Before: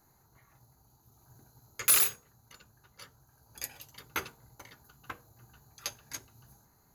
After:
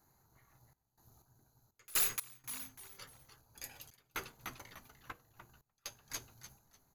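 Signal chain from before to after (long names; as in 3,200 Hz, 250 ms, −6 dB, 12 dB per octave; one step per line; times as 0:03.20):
gain on one half-wave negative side −3 dB
echo with shifted repeats 298 ms, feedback 33%, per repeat −130 Hz, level −9 dB
soft clipping −25 dBFS, distortion −9 dB
sample-and-hold tremolo 4.1 Hz, depth 95%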